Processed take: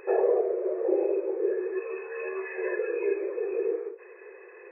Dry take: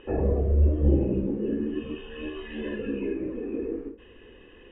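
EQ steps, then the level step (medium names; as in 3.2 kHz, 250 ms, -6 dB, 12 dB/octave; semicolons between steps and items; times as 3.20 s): brick-wall FIR band-pass 350–2600 Hz; +6.0 dB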